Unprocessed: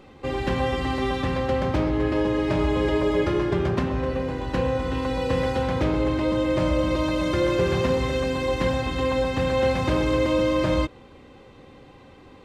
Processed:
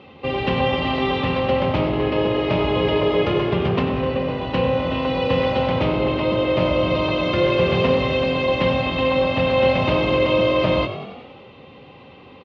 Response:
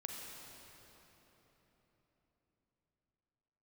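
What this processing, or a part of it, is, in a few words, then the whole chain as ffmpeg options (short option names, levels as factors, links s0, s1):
frequency-shifting delay pedal into a guitar cabinet: -filter_complex "[0:a]asplit=8[s0][s1][s2][s3][s4][s5][s6][s7];[s1]adelay=94,afreqshift=45,volume=0.237[s8];[s2]adelay=188,afreqshift=90,volume=0.145[s9];[s3]adelay=282,afreqshift=135,volume=0.0881[s10];[s4]adelay=376,afreqshift=180,volume=0.0537[s11];[s5]adelay=470,afreqshift=225,volume=0.0327[s12];[s6]adelay=564,afreqshift=270,volume=0.02[s13];[s7]adelay=658,afreqshift=315,volume=0.0122[s14];[s0][s8][s9][s10][s11][s12][s13][s14]amix=inputs=8:normalize=0,highpass=100,equalizer=f=320:t=q:w=4:g=-6,equalizer=f=1600:t=q:w=4:g=-7,equalizer=f=2800:t=q:w=4:g=7,lowpass=f=4200:w=0.5412,lowpass=f=4200:w=1.3066,volume=1.78"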